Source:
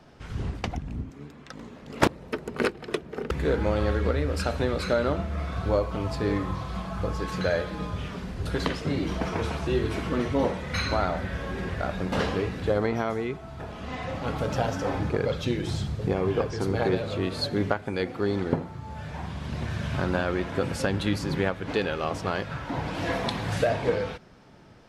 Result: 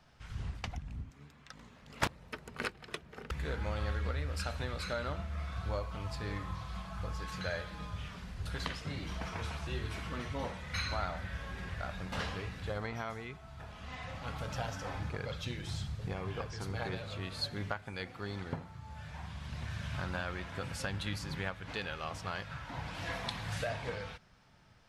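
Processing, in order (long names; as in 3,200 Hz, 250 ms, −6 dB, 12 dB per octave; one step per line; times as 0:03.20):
parametric band 350 Hz −13 dB 1.9 octaves
level −6 dB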